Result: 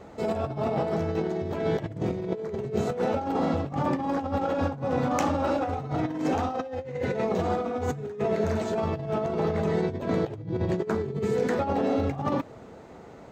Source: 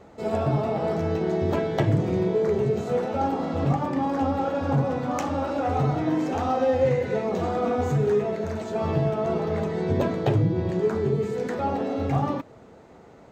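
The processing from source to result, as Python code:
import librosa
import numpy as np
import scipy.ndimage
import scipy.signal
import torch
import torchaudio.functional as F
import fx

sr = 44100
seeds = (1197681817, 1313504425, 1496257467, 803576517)

y = fx.over_compress(x, sr, threshold_db=-27.0, ratio=-0.5)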